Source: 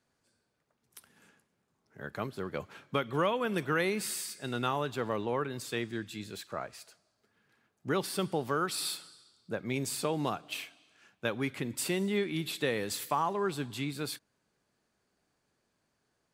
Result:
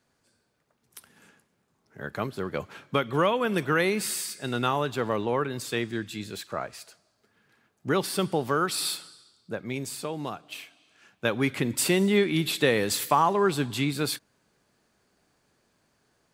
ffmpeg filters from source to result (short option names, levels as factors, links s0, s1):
-af "volume=5.96,afade=t=out:st=8.93:d=1.07:silence=0.446684,afade=t=in:st=10.63:d=0.94:silence=0.316228"